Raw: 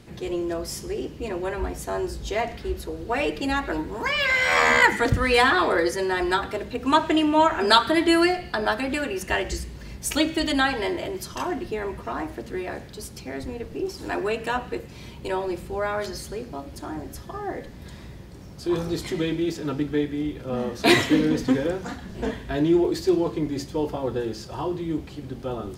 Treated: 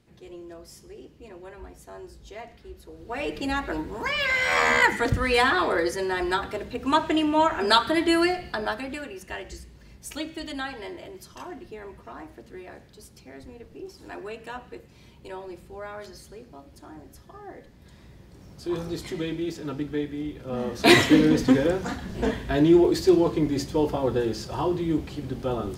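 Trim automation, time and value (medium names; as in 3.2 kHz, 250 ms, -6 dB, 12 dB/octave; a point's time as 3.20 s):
2.79 s -14.5 dB
3.38 s -2.5 dB
8.48 s -2.5 dB
9.21 s -11 dB
17.80 s -11 dB
18.52 s -4.5 dB
20.40 s -4.5 dB
20.98 s +2.5 dB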